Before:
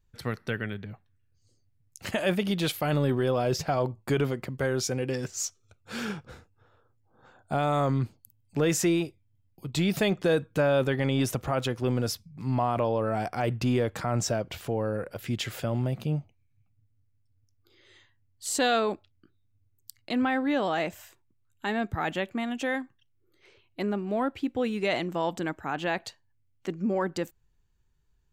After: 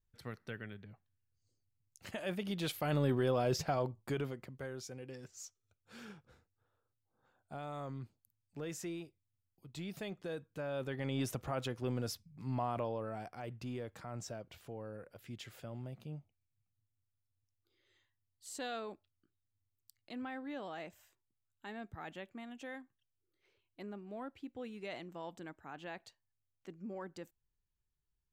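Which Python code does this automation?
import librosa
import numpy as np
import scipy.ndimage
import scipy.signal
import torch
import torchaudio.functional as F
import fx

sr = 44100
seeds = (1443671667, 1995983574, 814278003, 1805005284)

y = fx.gain(x, sr, db=fx.line((2.21, -13.5), (3.06, -6.0), (3.61, -6.0), (4.85, -18.0), (10.56, -18.0), (11.19, -10.0), (12.73, -10.0), (13.39, -17.0)))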